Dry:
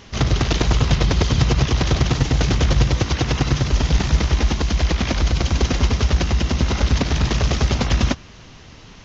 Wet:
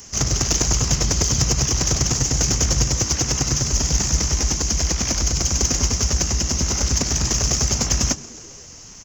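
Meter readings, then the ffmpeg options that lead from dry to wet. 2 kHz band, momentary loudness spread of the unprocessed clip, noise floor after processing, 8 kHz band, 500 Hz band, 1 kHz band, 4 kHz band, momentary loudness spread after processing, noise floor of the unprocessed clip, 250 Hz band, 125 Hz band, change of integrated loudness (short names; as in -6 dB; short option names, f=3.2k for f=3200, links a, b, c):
-4.5 dB, 2 LU, -41 dBFS, n/a, -4.5 dB, -4.5 dB, +2.5 dB, 2 LU, -43 dBFS, -4.5 dB, -4.5 dB, +0.5 dB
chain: -filter_complex "[0:a]asplit=6[a][b][c][d][e][f];[b]adelay=133,afreqshift=86,volume=-22dB[g];[c]adelay=266,afreqshift=172,volume=-26dB[h];[d]adelay=399,afreqshift=258,volume=-30dB[i];[e]adelay=532,afreqshift=344,volume=-34dB[j];[f]adelay=665,afreqshift=430,volume=-38.1dB[k];[a][g][h][i][j][k]amix=inputs=6:normalize=0,acrossover=split=190[l][m];[m]aexciter=amount=8.4:drive=9.4:freq=5.7k[n];[l][n]amix=inputs=2:normalize=0,volume=-4.5dB"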